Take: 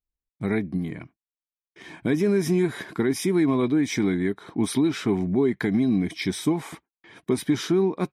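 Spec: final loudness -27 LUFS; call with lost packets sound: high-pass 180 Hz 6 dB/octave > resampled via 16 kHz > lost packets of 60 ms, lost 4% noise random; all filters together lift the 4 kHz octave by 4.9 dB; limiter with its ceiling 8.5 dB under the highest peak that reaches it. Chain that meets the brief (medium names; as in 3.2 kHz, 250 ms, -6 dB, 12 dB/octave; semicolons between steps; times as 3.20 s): peaking EQ 4 kHz +6 dB; peak limiter -18.5 dBFS; high-pass 180 Hz 6 dB/octave; resampled via 16 kHz; lost packets of 60 ms, lost 4% noise random; trim +2.5 dB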